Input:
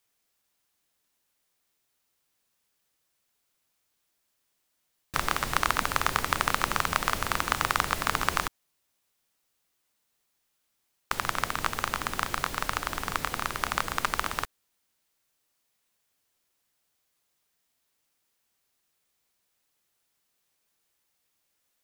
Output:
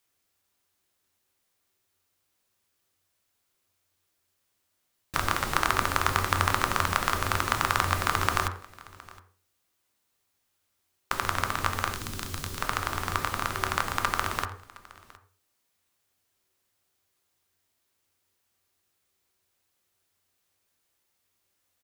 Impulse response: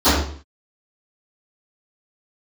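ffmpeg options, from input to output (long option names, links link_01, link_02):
-filter_complex "[0:a]asplit=2[link_01][link_02];[link_02]aecho=0:1:715:0.0794[link_03];[link_01][link_03]amix=inputs=2:normalize=0,asettb=1/sr,asplit=3[link_04][link_05][link_06];[link_04]atrim=end=11.934[link_07];[link_05]atrim=start=11.93:end=12.6,asetpts=PTS-STARTPTS,afade=type=in:duration=0.004:curve=qsin,afade=type=out:start_time=0.666:duration=0.004:curve=qsin,acrossover=split=360|3000[link_08][link_09][link_10];[link_09]acompressor=threshold=-50dB:ratio=2[link_11];[link_08][link_11][link_10]amix=inputs=3:normalize=0[link_12];[link_06]atrim=start=12.596[link_13];[link_07][link_12]acrossfade=duration=0.004:curve1=hsin:curve2=qsin[link_14];[link_14][link_13]acrossfade=duration=0.004:curve1=qsin:curve2=hsin,asplit=2[link_15][link_16];[1:a]atrim=start_sample=2205,asetrate=57330,aresample=44100,lowpass=3600[link_17];[link_16][link_17]afir=irnorm=-1:irlink=0,volume=-31dB[link_18];[link_15][link_18]amix=inputs=2:normalize=0"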